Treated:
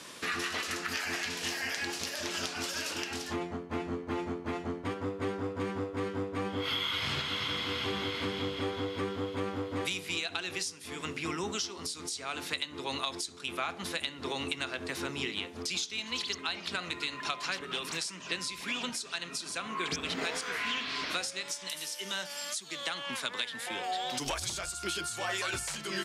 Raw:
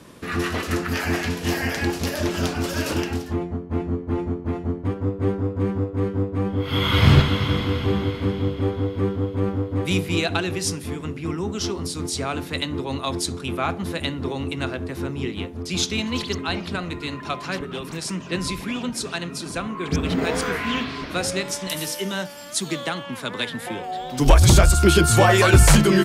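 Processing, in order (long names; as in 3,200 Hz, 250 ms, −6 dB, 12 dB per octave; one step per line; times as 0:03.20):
spectral tilt +4.5 dB per octave
downward compressor 10 to 1, threshold −29 dBFS, peak gain reduction 24.5 dB
high-frequency loss of the air 69 metres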